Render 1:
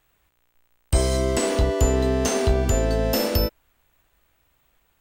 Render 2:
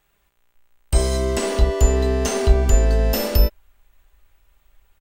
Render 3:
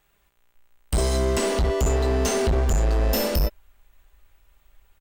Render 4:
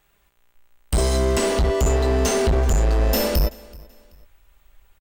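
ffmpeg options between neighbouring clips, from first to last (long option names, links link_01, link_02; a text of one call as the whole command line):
ffmpeg -i in.wav -af "aecho=1:1:5:0.38,asubboost=boost=5.5:cutoff=68" out.wav
ffmpeg -i in.wav -af "volume=17.5dB,asoftclip=hard,volume=-17.5dB" out.wav
ffmpeg -i in.wav -af "aecho=1:1:381|762:0.0708|0.0227,volume=2.5dB" out.wav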